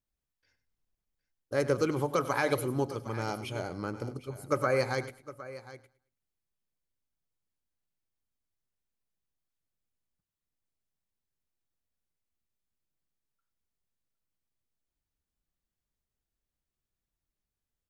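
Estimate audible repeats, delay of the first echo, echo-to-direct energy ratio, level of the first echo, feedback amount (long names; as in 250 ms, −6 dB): 3, 97 ms, −12.0 dB, −15.0 dB, repeats not evenly spaced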